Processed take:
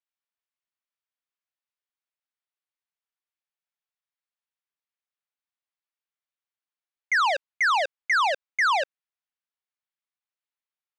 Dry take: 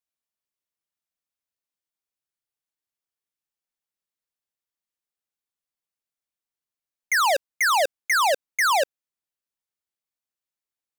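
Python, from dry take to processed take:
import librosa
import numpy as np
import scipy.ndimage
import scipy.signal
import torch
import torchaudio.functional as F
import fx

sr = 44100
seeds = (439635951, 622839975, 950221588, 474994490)

y = fx.bandpass_edges(x, sr, low_hz=780.0, high_hz=3500.0)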